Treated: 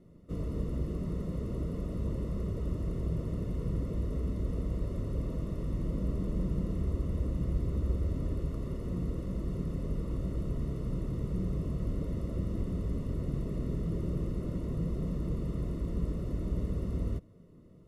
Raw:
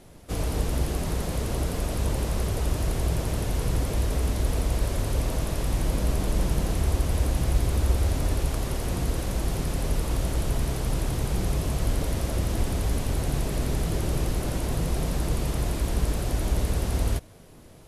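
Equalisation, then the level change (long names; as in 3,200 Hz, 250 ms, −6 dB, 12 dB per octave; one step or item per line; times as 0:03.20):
moving average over 55 samples
spectral tilt +2 dB per octave
parametric band 180 Hz +6 dB 0.37 octaves
0.0 dB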